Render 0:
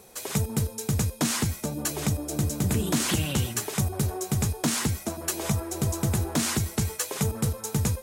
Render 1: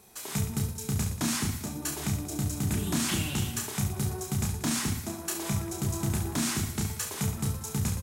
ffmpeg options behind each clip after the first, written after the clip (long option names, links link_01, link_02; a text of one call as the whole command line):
ffmpeg -i in.wav -af "equalizer=frequency=510:width_type=o:width=0.44:gain=-11,aecho=1:1:30|69|119.7|185.6|271.3:0.631|0.398|0.251|0.158|0.1,volume=-5dB" out.wav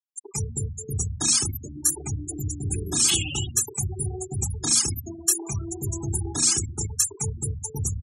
ffmpeg -i in.wav -af "afftfilt=real='re*gte(hypot(re,im),0.0355)':imag='im*gte(hypot(re,im),0.0355)':win_size=1024:overlap=0.75,aexciter=amount=5.4:drive=3:freq=2700,aecho=1:1:2.4:0.67" out.wav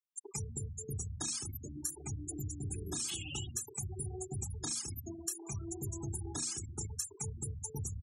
ffmpeg -i in.wav -af "acompressor=threshold=-29dB:ratio=6,volume=-7dB" out.wav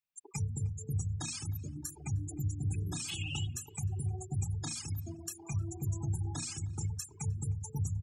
ffmpeg -i in.wav -filter_complex "[0:a]equalizer=frequency=100:width_type=o:width=0.33:gain=10,equalizer=frequency=160:width_type=o:width=0.33:gain=9,equalizer=frequency=400:width_type=o:width=0.33:gain=-8,equalizer=frequency=800:width_type=o:width=0.33:gain=3,equalizer=frequency=2500:width_type=o:width=0.33:gain=8,equalizer=frequency=6300:width_type=o:width=0.33:gain=-4,equalizer=frequency=10000:width_type=o:width=0.33:gain=-8,asplit=2[link_01][link_02];[link_02]adelay=308,lowpass=frequency=2900:poles=1,volume=-21.5dB,asplit=2[link_03][link_04];[link_04]adelay=308,lowpass=frequency=2900:poles=1,volume=0.3[link_05];[link_01][link_03][link_05]amix=inputs=3:normalize=0" out.wav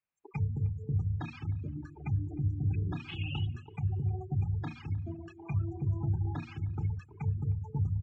ffmpeg -i in.wav -af "lowpass=frequency=2500:width=0.5412,lowpass=frequency=2500:width=1.3066,volume=3.5dB" out.wav